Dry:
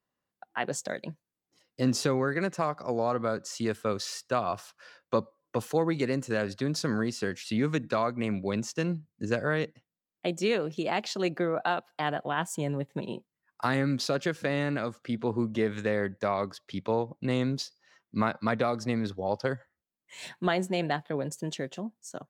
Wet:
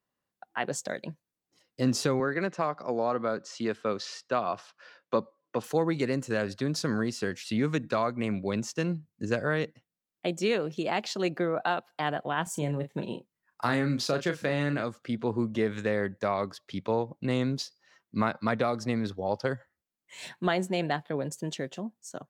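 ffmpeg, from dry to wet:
-filter_complex "[0:a]asettb=1/sr,asplit=3[s0][s1][s2];[s0]atrim=end=2.204[s3];[s1]atrim=start=2.2:end=5.64,asetpts=PTS-STARTPTS,afade=t=in:d=0.004:c=qsin,afade=t=out:st=3.436:d=0.004:c=qsin,highpass=160,lowpass=5000[s4];[s2]atrim=start=5.636[s5];[s3][s4]acrossfade=d=0.004:c1=hsin:c2=qsin[s6];[s6][s5]acrossfade=d=0.004:c1=qsin:c2=hsin,asettb=1/sr,asplit=3[s7][s8][s9];[s7]atrim=end=12.434[s10];[s8]atrim=start=12.43:end=14.84,asetpts=PTS-STARTPTS,afade=t=in:d=0.004:c=qsin,afade=t=out:st=2.406:d=0.004:c=qsin,asplit=2[s11][s12];[s12]adelay=34,volume=0.355[s13];[s11][s13]amix=inputs=2:normalize=0,atrim=end_sample=106281[s14];[s9]atrim=start=14.836[s15];[s10][s14]acrossfade=d=0.004:c1=hsin:c2=qsin[s16];[s16][s15]acrossfade=d=0.004:c1=qsin:c2=hsin"

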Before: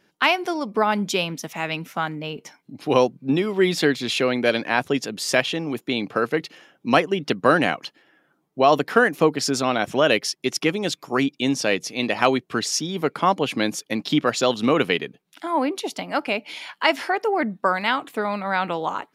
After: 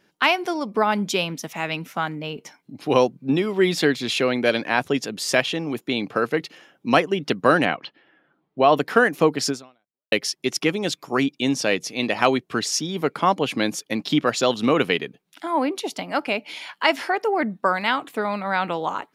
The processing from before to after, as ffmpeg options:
-filter_complex "[0:a]asettb=1/sr,asplit=3[s0][s1][s2];[s0]atrim=end=7.654[s3];[s1]atrim=start=7.65:end=8.77,asetpts=PTS-STARTPTS,afade=t=in:d=0.004:c=qsin,afade=t=out:st=1.116:d=0.004:c=qsin,lowpass=f=3900:w=0.5412,lowpass=f=3900:w=1.3066[s4];[s2]atrim=start=8.766[s5];[s3][s4]acrossfade=d=0.004:c1=hsin:c2=qsin[s6];[s6][s5]acrossfade=d=0.004:c1=qsin:c2=hsin,asplit=2[s7][s8];[s7]atrim=end=10.12,asetpts=PTS-STARTPTS,afade=t=out:st=9.5:d=0.62:c=exp[s9];[s8]atrim=start=10.12,asetpts=PTS-STARTPTS,afade=t=in:d=0.004:c=hsin[s10];[s9][s10]concat=n=2:v=0:a=1"

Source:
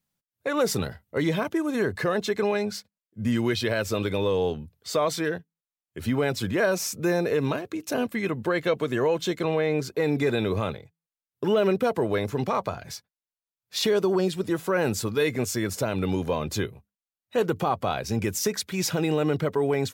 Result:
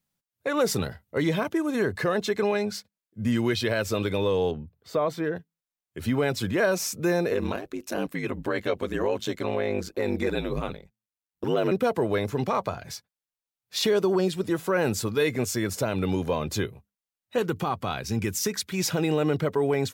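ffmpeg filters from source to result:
-filter_complex "[0:a]asettb=1/sr,asplit=3[s0][s1][s2];[s0]atrim=end=4.514[s3];[s1]atrim=start=4.51:end=5.36,asetpts=PTS-STARTPTS,afade=t=in:d=0.004:c=qsin,afade=t=out:st=0.846:d=0.004:c=qsin,equalizer=f=7800:t=o:w=2.9:g=-14.5[s4];[s2]atrim=start=5.356[s5];[s3][s4]acrossfade=d=0.004:c1=hsin:c2=qsin[s6];[s6][s5]acrossfade=d=0.004:c1=qsin:c2=hsin,asettb=1/sr,asplit=3[s7][s8][s9];[s7]atrim=end=7.334[s10];[s8]atrim=start=7.33:end=11.72,asetpts=PTS-STARTPTS,afade=t=in:d=0.004:c=qsin,afade=t=out:st=4.386:d=0.004:c=qsin,aeval=exprs='val(0)*sin(2*PI*50*n/s)':c=same[s11];[s9]atrim=start=11.716[s12];[s10][s11]acrossfade=d=0.004:c1=hsin:c2=qsin[s13];[s13][s12]acrossfade=d=0.004:c1=qsin:c2=hsin,asettb=1/sr,asplit=3[s14][s15][s16];[s14]atrim=end=17.384[s17];[s15]atrim=start=17.38:end=18.72,asetpts=PTS-STARTPTS,afade=t=in:d=0.004:c=qsin,afade=t=out:st=1.336:d=0.004:c=qsin,equalizer=f=600:w=1.5:g=-7[s18];[s16]atrim=start=18.716[s19];[s17][s18]acrossfade=d=0.004:c1=hsin:c2=qsin[s20];[s20][s19]acrossfade=d=0.004:c1=qsin:c2=hsin"

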